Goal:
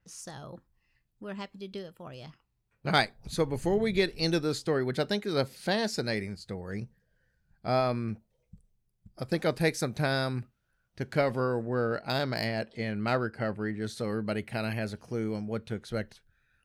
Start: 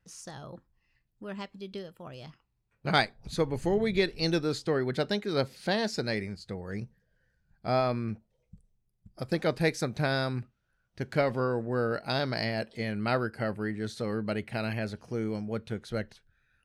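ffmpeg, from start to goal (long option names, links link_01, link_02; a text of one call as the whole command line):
ffmpeg -i in.wav -filter_complex "[0:a]asettb=1/sr,asplit=3[link_01][link_02][link_03];[link_01]atrim=end=11.694[link_04];[link_02]atrim=start=11.69:end=13.82,asetpts=PTS-STARTPTS,afade=type=in:duration=0.004:curve=qsin,afade=type=out:start_time=2.126:duration=0.004:curve=qsin,adynamicsmooth=sensitivity=3:basefreq=6100[link_05];[link_03]atrim=start=13.816[link_06];[link_04][link_05]acrossfade=duration=0.004:curve1=hsin:curve2=qsin[link_07];[link_07][link_06]acrossfade=duration=0.004:curve1=qsin:curve2=hsin,adynamicequalizer=threshold=0.00282:dfrequency=7600:dqfactor=0.7:tfrequency=7600:tqfactor=0.7:attack=5:release=100:ratio=0.375:range=3.5:mode=boostabove:tftype=highshelf" out.wav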